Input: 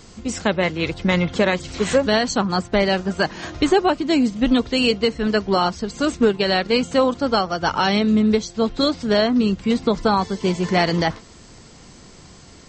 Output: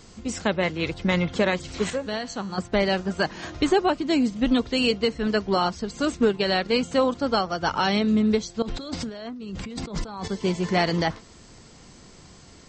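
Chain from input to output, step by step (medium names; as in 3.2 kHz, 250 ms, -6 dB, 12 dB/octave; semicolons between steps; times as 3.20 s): 1.90–2.58 s: feedback comb 98 Hz, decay 1.8 s, mix 60%; 8.62–10.28 s: compressor with a negative ratio -29 dBFS, ratio -1; trim -4 dB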